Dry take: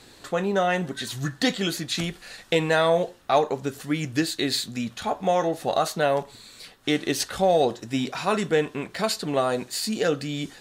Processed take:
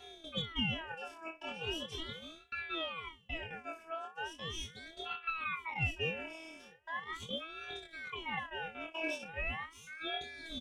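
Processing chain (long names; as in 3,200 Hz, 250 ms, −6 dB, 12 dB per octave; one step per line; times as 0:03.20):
dynamic equaliser 1,600 Hz, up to +6 dB, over −40 dBFS, Q 1.5
reversed playback
downward compressor 6 to 1, threshold −37 dBFS, peak gain reduction 21 dB
reversed playback
LFO wah 0.69 Hz 650–1,700 Hz, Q 2.3
phases set to zero 325 Hz
soft clipping −39 dBFS, distortion −16 dB
phaser with its sweep stopped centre 620 Hz, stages 8
on a send: ambience of single reflections 24 ms −3 dB, 61 ms −15 dB
on the sum: ring modulator whose carrier an LFO sweeps 1,500 Hz, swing 35%, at 0.39 Hz
level +15.5 dB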